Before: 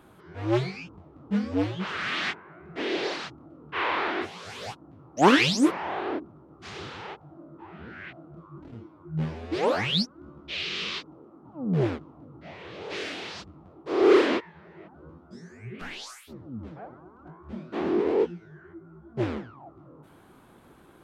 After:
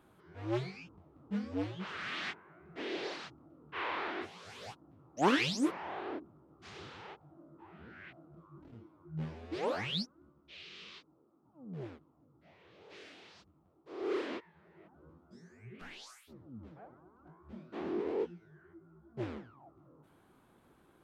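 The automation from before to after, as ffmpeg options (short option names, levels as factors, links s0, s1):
-af "volume=0.794,afade=t=out:st=9.93:d=0.41:silence=0.354813,afade=t=in:st=13.98:d=0.98:silence=0.398107"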